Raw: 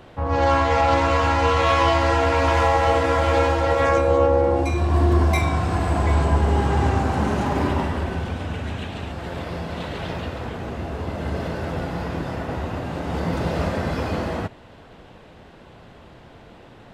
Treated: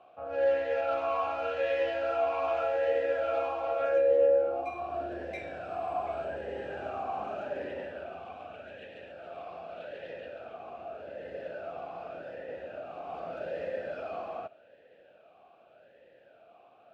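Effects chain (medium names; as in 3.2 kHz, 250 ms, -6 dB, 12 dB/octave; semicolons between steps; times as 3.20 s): talking filter a-e 0.84 Hz; trim -1.5 dB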